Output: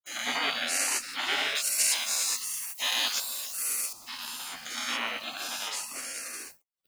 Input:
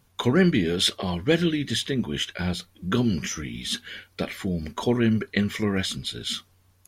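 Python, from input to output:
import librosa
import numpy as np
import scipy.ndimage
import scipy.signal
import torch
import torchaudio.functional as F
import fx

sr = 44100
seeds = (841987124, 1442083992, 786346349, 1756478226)

y = fx.spec_dilate(x, sr, span_ms=240)
y = scipy.signal.sosfilt(scipy.signal.ellip(4, 1.0, 40, 320.0, 'highpass', fs=sr, output='sos'), y)
y = y + 10.0 ** (-19.0 / 20.0) * np.pad(y, (int(148 * sr / 1000.0), 0))[:len(y)]
y = np.where(np.abs(y) >= 10.0 ** (-41.5 / 20.0), y, 0.0)
y = fx.spec_gate(y, sr, threshold_db=-20, keep='weak')
y = fx.tilt_eq(y, sr, slope=3.0, at=(1.55, 3.93))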